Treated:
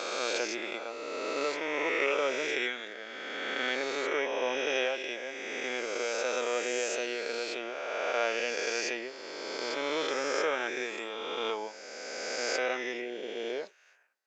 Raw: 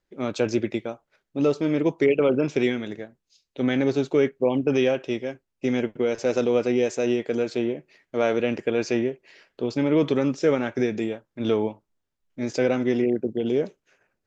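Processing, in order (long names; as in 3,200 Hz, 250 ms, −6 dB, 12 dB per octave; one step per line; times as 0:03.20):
peak hold with a rise ahead of every peak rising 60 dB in 2.68 s
high-pass filter 810 Hz 12 dB per octave
level −3.5 dB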